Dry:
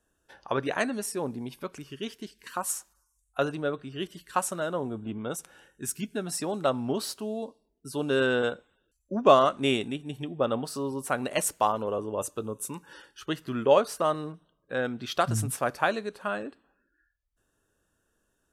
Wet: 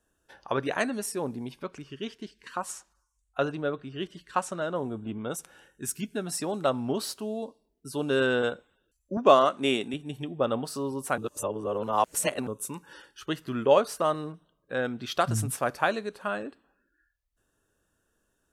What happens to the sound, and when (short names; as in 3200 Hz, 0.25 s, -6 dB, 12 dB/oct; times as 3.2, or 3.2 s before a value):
1.52–4.76 air absorption 67 m
9.17–9.94 HPF 180 Hz
11.18–12.47 reverse